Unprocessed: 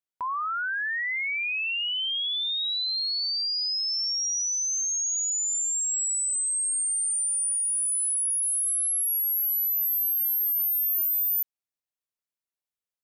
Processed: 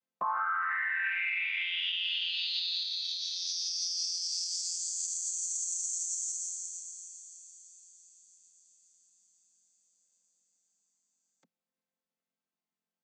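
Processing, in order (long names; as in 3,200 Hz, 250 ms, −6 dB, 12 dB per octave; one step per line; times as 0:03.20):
channel vocoder with a chord as carrier major triad, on F3
brickwall limiter −23.5 dBFS, peak gain reduction 10.5 dB
0:02.83–0:03.36: notch comb filter 160 Hz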